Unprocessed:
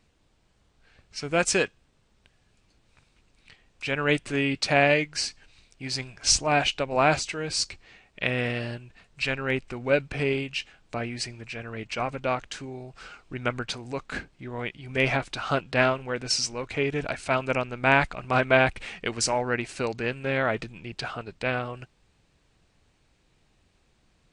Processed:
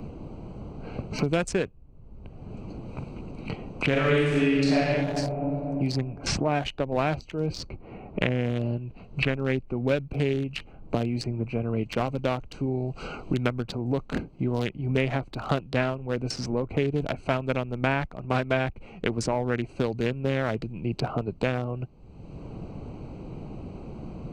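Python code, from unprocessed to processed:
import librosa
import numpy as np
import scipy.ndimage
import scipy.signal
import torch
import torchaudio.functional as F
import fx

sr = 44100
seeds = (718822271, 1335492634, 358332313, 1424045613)

y = fx.reverb_throw(x, sr, start_s=3.88, length_s=0.88, rt60_s=1.9, drr_db=-9.5)
y = fx.air_absorb(y, sr, metres=79.0, at=(6.96, 9.97))
y = fx.wiener(y, sr, points=25)
y = fx.low_shelf(y, sr, hz=420.0, db=8.5)
y = fx.band_squash(y, sr, depth_pct=100)
y = y * librosa.db_to_amplitude(-4.0)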